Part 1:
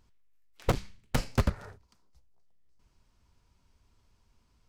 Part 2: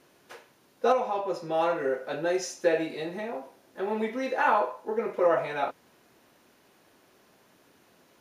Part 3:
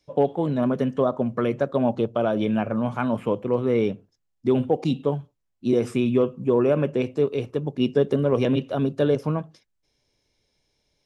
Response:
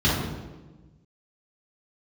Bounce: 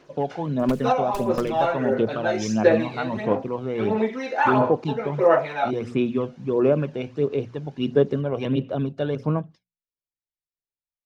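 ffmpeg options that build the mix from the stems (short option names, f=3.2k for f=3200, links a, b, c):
-filter_complex "[0:a]highpass=1.1k,aeval=exprs='abs(val(0))':c=same,volume=-2.5dB[a];[1:a]lowpass=f=6.6k:w=0.5412,lowpass=f=6.6k:w=1.3066,volume=2dB[b];[2:a]agate=range=-33dB:threshold=-38dB:ratio=3:detection=peak,lowpass=4.8k,volume=-3.5dB[c];[a][b][c]amix=inputs=3:normalize=0,bandreject=f=60:t=h:w=6,bandreject=f=120:t=h:w=6,bandreject=f=180:t=h:w=6,bandreject=f=240:t=h:w=6,aphaser=in_gain=1:out_gain=1:delay=1.4:decay=0.47:speed=1.5:type=sinusoidal"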